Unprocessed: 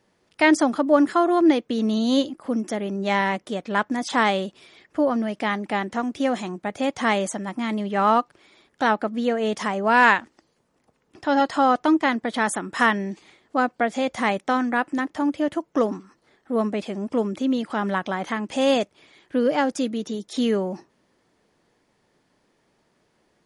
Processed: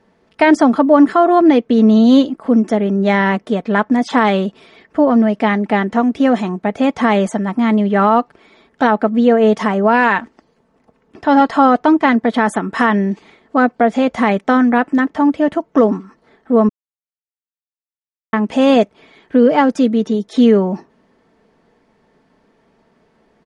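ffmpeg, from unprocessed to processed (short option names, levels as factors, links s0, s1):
-filter_complex "[0:a]asplit=3[s0][s1][s2];[s0]atrim=end=16.69,asetpts=PTS-STARTPTS,afade=t=out:st=16.686:d=0.004:c=hsin[s3];[s1]atrim=start=16.69:end=18.33,asetpts=PTS-STARTPTS,volume=0[s4];[s2]atrim=start=18.33,asetpts=PTS-STARTPTS,afade=t=in:d=0.004:c=hsin[s5];[s3][s4][s5]concat=n=3:v=0:a=1,lowpass=f=1600:p=1,aecho=1:1:4.5:0.4,alimiter=level_in=3.55:limit=0.891:release=50:level=0:latency=1,volume=0.891"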